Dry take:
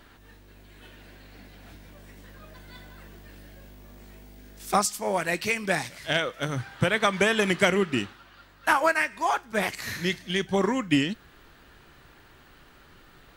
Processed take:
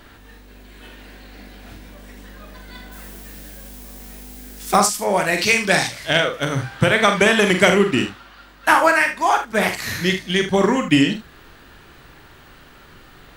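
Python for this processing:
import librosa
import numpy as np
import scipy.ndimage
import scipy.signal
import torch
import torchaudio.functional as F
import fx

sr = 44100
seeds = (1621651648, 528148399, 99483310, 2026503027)

y = fx.dmg_noise_colour(x, sr, seeds[0], colour='blue', level_db=-51.0, at=(2.91, 4.76), fade=0.02)
y = fx.room_early_taps(y, sr, ms=(44, 76), db=(-7.0, -11.5))
y = fx.dynamic_eq(y, sr, hz=4700.0, q=0.77, threshold_db=-41.0, ratio=4.0, max_db=7, at=(5.37, 6.06), fade=0.02)
y = y * 10.0 ** (7.0 / 20.0)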